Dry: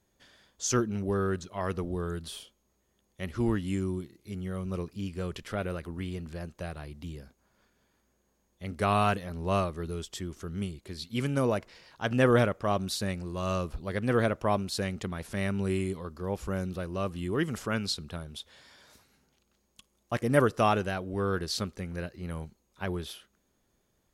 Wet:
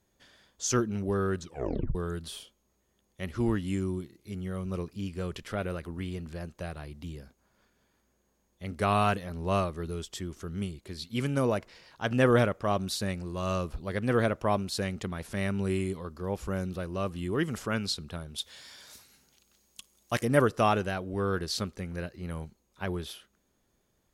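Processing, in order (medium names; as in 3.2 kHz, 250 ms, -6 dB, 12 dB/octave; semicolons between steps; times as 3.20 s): 1.43 s: tape stop 0.52 s; 18.38–20.25 s: treble shelf 2.5 kHz +11.5 dB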